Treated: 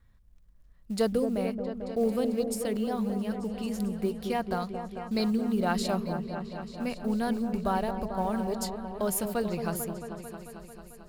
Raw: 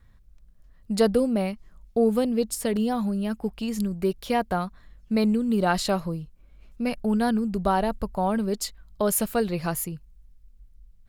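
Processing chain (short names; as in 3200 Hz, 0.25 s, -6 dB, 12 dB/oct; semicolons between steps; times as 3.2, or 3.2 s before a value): 4.51–5.41 bell 4800 Hz +11.5 dB 0.56 oct; short-mantissa float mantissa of 4-bit; on a send: repeats that get brighter 0.222 s, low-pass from 750 Hz, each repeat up 1 oct, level -6 dB; on the sum: gain -6 dB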